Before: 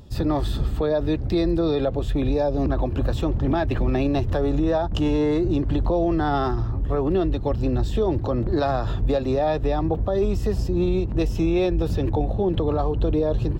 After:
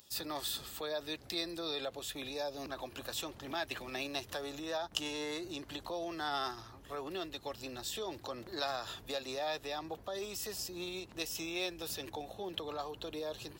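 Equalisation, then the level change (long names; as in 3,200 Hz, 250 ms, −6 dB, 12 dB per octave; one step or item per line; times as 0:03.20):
first difference
+5.5 dB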